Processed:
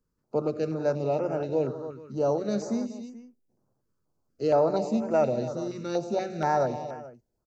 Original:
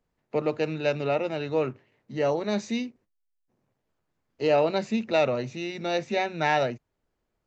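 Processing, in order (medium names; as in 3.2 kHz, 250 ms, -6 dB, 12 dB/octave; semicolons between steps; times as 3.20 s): high-order bell 2.6 kHz -13 dB 1.3 oct; on a send: multi-tap echo 98/187/280/432 ms -15/-15.5/-12.5/-18 dB; on the sum: step-sequenced notch 4.2 Hz 730–3900 Hz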